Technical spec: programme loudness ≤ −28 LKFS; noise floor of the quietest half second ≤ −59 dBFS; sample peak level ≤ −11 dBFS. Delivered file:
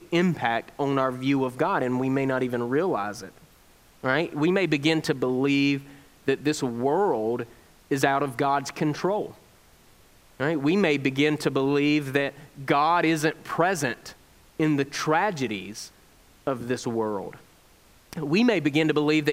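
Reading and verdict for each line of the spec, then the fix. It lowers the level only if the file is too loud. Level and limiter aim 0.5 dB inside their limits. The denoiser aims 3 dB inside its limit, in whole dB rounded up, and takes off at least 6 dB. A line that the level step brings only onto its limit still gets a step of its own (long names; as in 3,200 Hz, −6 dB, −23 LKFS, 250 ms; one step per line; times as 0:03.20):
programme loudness −25.0 LKFS: out of spec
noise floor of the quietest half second −56 dBFS: out of spec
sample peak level −5.0 dBFS: out of spec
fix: level −3.5 dB
brickwall limiter −11.5 dBFS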